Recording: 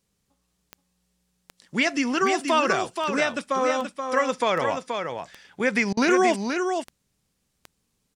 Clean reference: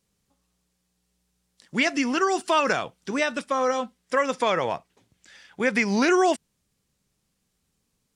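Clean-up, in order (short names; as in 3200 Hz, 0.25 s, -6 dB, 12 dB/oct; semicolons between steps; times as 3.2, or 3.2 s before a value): de-click; interpolate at 5.93, 40 ms; inverse comb 0.478 s -6 dB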